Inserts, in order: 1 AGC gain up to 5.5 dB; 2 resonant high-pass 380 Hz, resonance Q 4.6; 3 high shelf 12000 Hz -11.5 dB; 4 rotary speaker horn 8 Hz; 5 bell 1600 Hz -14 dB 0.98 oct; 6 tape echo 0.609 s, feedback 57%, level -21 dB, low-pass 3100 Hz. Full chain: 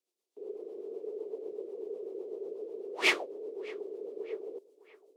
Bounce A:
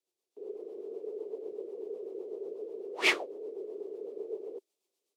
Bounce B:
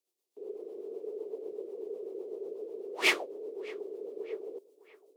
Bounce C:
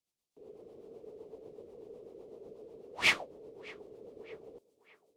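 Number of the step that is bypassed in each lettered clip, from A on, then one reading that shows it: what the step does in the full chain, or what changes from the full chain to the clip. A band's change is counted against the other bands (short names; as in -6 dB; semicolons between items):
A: 6, echo-to-direct -27.5 dB to none; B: 3, 8 kHz band +2.0 dB; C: 2, 500 Hz band -9.5 dB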